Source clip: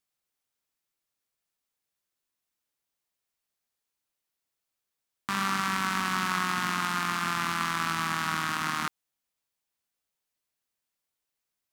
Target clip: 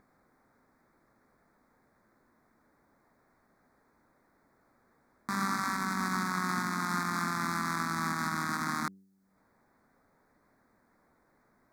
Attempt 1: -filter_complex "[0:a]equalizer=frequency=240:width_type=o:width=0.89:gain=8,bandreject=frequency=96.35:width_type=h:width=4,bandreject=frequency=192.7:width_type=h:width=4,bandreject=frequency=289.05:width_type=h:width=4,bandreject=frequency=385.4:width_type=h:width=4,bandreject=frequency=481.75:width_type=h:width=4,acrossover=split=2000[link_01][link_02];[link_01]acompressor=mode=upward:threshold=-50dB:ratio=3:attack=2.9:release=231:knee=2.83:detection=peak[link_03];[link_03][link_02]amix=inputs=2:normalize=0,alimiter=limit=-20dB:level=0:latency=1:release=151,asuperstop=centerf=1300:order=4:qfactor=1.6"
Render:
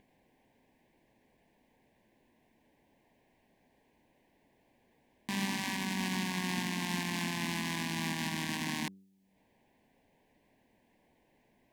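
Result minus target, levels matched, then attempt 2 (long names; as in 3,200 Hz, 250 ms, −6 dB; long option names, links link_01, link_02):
4,000 Hz band +7.5 dB
-filter_complex "[0:a]equalizer=frequency=240:width_type=o:width=0.89:gain=8,bandreject=frequency=96.35:width_type=h:width=4,bandreject=frequency=192.7:width_type=h:width=4,bandreject=frequency=289.05:width_type=h:width=4,bandreject=frequency=385.4:width_type=h:width=4,bandreject=frequency=481.75:width_type=h:width=4,acrossover=split=2000[link_01][link_02];[link_01]acompressor=mode=upward:threshold=-50dB:ratio=3:attack=2.9:release=231:knee=2.83:detection=peak[link_03];[link_03][link_02]amix=inputs=2:normalize=0,alimiter=limit=-20dB:level=0:latency=1:release=151,asuperstop=centerf=2900:order=4:qfactor=1.6"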